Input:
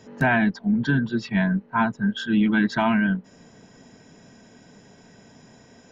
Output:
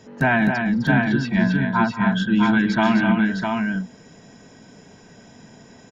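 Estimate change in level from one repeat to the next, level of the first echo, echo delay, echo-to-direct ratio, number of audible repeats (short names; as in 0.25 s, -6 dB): no steady repeat, -17.0 dB, 0.179 s, -1.5 dB, 5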